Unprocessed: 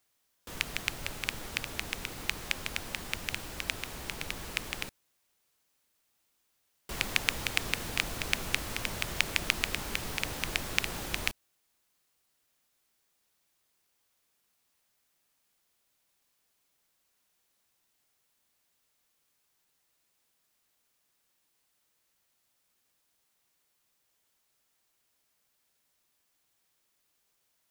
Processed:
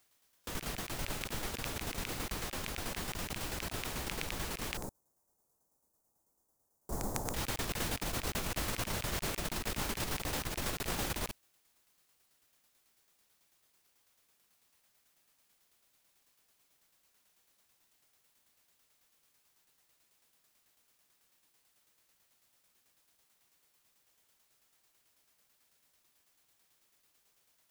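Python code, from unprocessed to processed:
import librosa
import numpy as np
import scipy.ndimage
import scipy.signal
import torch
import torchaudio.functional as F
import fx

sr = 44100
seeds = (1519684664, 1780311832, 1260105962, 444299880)

y = fx.curve_eq(x, sr, hz=(880.0, 2800.0, 6800.0), db=(0, -29, -5), at=(4.77, 7.34))
y = fx.over_compress(y, sr, threshold_db=-38.0, ratio=-0.5)
y = fx.tremolo_shape(y, sr, shape='saw_down', hz=9.1, depth_pct=50)
y = y * librosa.db_to_amplitude(3.0)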